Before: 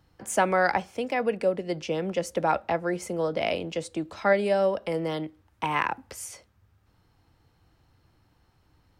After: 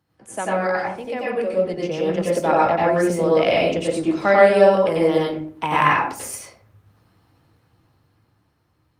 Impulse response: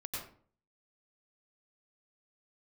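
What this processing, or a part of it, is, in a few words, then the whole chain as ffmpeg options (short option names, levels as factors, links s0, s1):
far-field microphone of a smart speaker: -filter_complex "[1:a]atrim=start_sample=2205[s0];[0:a][s0]afir=irnorm=-1:irlink=0,highpass=110,dynaudnorm=f=370:g=11:m=6.31" -ar 48000 -c:a libopus -b:a 32k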